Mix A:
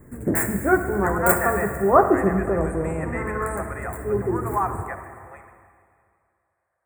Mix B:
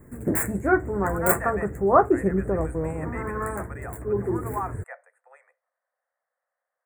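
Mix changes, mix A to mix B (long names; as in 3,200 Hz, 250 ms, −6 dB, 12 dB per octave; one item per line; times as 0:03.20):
speech −4.5 dB
reverb: off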